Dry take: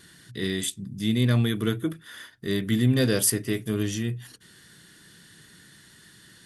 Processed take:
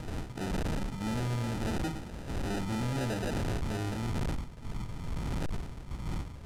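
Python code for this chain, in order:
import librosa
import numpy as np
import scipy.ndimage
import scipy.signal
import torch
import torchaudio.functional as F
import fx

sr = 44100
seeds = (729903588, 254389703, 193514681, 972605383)

y = fx.dmg_wind(x, sr, seeds[0], corner_hz=fx.steps((0.0, 280.0), (3.4, 170.0)), level_db=-27.0)
y = 10.0 ** (-14.0 / 20.0) * (np.abs((y / 10.0 ** (-14.0 / 20.0) + 3.0) % 4.0 - 2.0) - 1.0)
y = fx.low_shelf(y, sr, hz=87.0, db=9.0)
y = fx.echo_feedback(y, sr, ms=113, feedback_pct=26, wet_db=-16)
y = fx.sample_hold(y, sr, seeds[1], rate_hz=1100.0, jitter_pct=0)
y = np.clip(10.0 ** (24.5 / 20.0) * y, -1.0, 1.0) / 10.0 ** (24.5 / 20.0)
y = scipy.signal.sosfilt(scipy.signal.butter(2, 11000.0, 'lowpass', fs=sr, output='sos'), y)
y = y * librosa.db_to_amplitude(-5.5)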